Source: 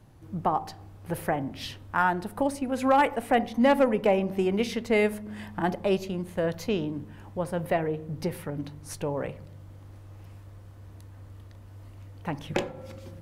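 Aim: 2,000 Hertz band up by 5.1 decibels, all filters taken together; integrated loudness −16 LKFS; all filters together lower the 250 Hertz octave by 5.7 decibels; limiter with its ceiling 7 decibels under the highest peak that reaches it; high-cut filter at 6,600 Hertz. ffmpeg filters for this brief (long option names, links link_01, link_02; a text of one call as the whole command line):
ffmpeg -i in.wav -af "lowpass=6600,equalizer=frequency=250:width_type=o:gain=-7.5,equalizer=frequency=2000:width_type=o:gain=6.5,volume=14dB,alimiter=limit=-1dB:level=0:latency=1" out.wav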